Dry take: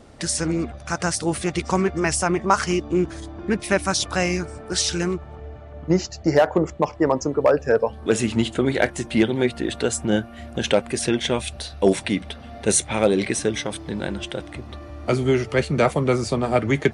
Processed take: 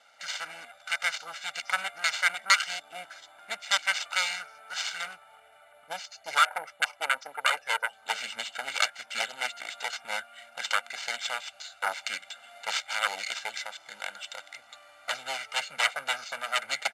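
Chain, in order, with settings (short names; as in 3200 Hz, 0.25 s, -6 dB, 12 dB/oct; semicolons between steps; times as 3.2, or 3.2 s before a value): self-modulated delay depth 0.78 ms; comb 1.4 ms, depth 90%; careless resampling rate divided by 4×, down filtered, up hold; Butterworth band-pass 3100 Hz, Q 0.53; gain -3 dB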